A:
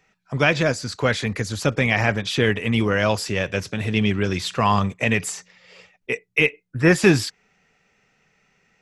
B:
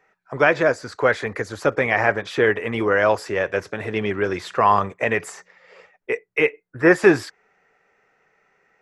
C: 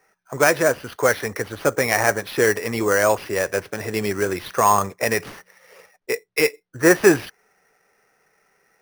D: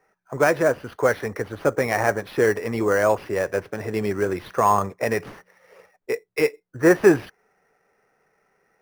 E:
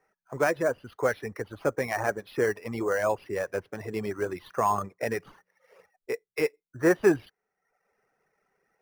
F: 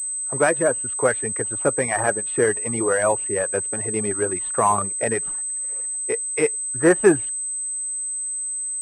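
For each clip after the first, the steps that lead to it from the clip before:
high-order bell 800 Hz +13 dB 3 oct; trim -9 dB
sample-rate reducer 7.6 kHz, jitter 0%
treble shelf 2.2 kHz -11.5 dB
reverb removal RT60 0.74 s; trim -6 dB
class-D stage that switches slowly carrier 8.2 kHz; trim +6 dB

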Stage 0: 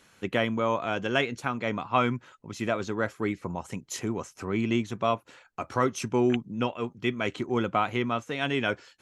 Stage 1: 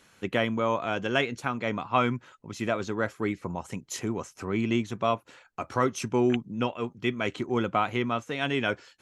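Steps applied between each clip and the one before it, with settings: no audible change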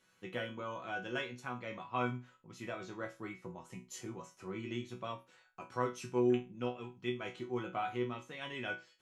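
chord resonator B2 sus4, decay 0.27 s; trim +1 dB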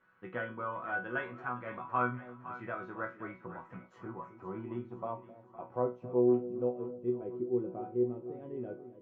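low-pass sweep 1.4 kHz -> 420 Hz, 3.40–7.33 s; two-band feedback delay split 640 Hz, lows 263 ms, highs 511 ms, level -13.5 dB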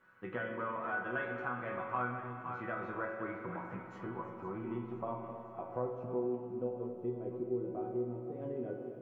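compression 2:1, threshold -42 dBFS, peak gain reduction 11 dB; on a send at -3 dB: reverberation RT60 2.7 s, pre-delay 39 ms; on the sum: trim +3 dB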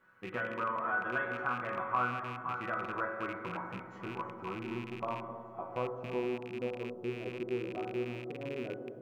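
rattle on loud lows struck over -45 dBFS, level -36 dBFS; dynamic bell 1.2 kHz, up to +6 dB, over -51 dBFS, Q 1.5

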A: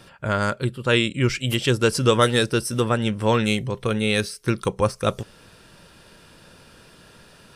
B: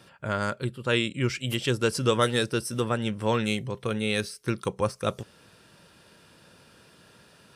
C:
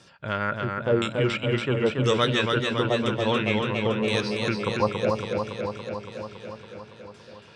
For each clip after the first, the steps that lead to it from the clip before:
high-pass 80 Hz; trim -5.5 dB
LFO low-pass saw down 0.98 Hz 470–7200 Hz; modulated delay 281 ms, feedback 73%, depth 57 cents, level -4 dB; trim -1 dB

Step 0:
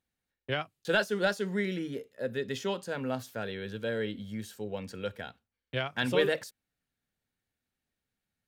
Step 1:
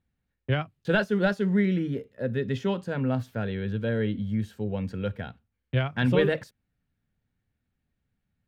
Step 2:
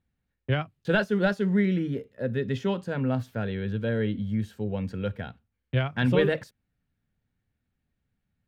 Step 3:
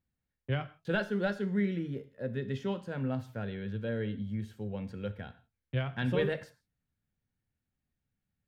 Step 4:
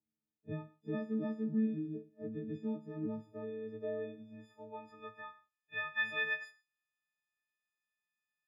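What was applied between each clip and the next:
tone controls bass +12 dB, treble -12 dB; trim +2 dB
no audible change
reverberation, pre-delay 3 ms, DRR 10.5 dB; trim -7.5 dB
partials quantised in pitch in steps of 6 st; pre-echo 31 ms -20 dB; band-pass sweep 270 Hz -> 1.9 kHz, 2.89–6.02 s; trim +1 dB

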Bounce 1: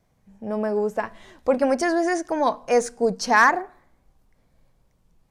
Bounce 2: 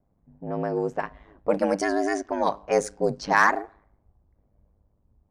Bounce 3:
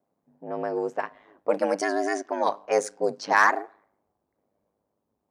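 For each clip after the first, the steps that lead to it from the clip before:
ring modulator 51 Hz; level-controlled noise filter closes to 840 Hz, open at -19.5 dBFS
high-pass 320 Hz 12 dB/octave

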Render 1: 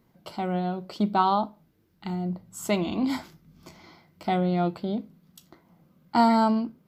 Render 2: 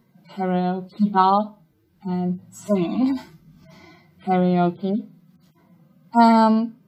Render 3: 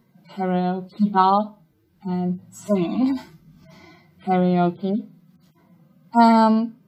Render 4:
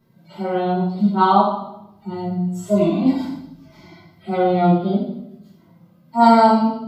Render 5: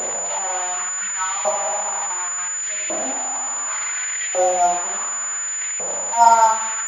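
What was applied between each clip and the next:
harmonic-percussive separation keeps harmonic; trim +6 dB
no audible change
reverberation RT60 0.80 s, pre-delay 3 ms, DRR -10 dB; trim -8 dB
one-bit delta coder 64 kbps, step -17.5 dBFS; LFO high-pass saw up 0.69 Hz 530–2200 Hz; class-D stage that switches slowly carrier 7 kHz; trim -5 dB

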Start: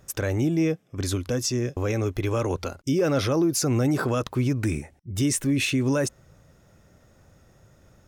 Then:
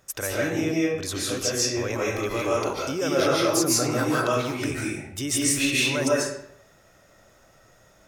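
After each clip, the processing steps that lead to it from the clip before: bass shelf 370 Hz -12 dB; reverberation RT60 0.70 s, pre-delay 105 ms, DRR -5.5 dB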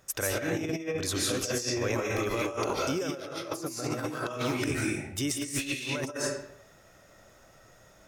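compressor with a negative ratio -27 dBFS, ratio -0.5; trim -3.5 dB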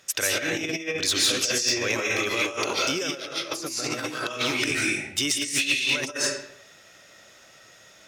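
frequency weighting D; in parallel at -6.5 dB: wavefolder -18.5 dBFS; on the sum: trim -2 dB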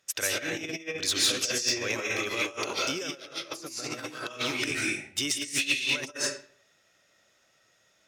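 upward expansion 1.5:1, over -45 dBFS; trim -2 dB

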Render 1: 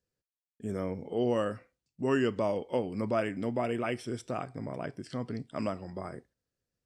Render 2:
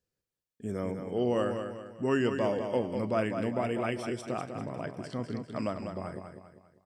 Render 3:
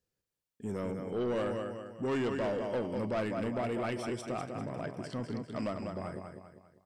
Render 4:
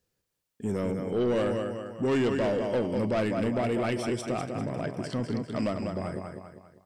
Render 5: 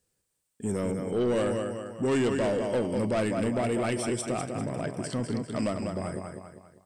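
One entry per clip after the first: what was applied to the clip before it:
feedback delay 198 ms, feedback 41%, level -7 dB
saturation -27.5 dBFS, distortion -11 dB
dynamic bell 1.1 kHz, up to -4 dB, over -46 dBFS, Q 1; trim +7 dB
peaking EQ 8.5 kHz +12.5 dB 0.43 oct

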